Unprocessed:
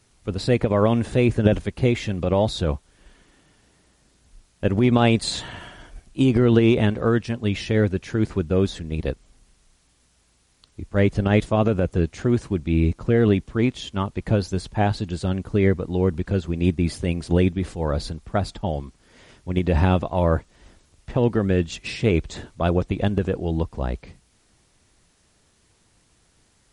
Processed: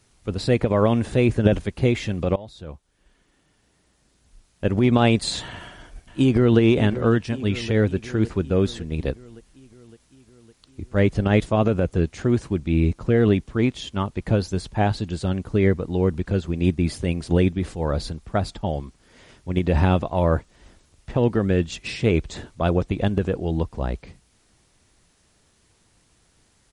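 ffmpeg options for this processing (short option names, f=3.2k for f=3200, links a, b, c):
-filter_complex "[0:a]asplit=2[a][b];[b]afade=t=in:st=5.51:d=0.01,afade=t=out:st=6.6:d=0.01,aecho=0:1:560|1120|1680|2240|2800|3360|3920|4480:0.223872|0.145517|0.094586|0.0614809|0.0399626|0.0259757|0.0168842|0.0109747[c];[a][c]amix=inputs=2:normalize=0,asplit=2[d][e];[d]atrim=end=2.36,asetpts=PTS-STARTPTS,afade=t=out:st=2.356:d=0.004:c=hsin:silence=0.0891251[f];[e]atrim=start=2.36,asetpts=PTS-STARTPTS,afade=t=in:d=2.55:silence=0.0891251[g];[f][g]concat=n=2:v=0:a=1"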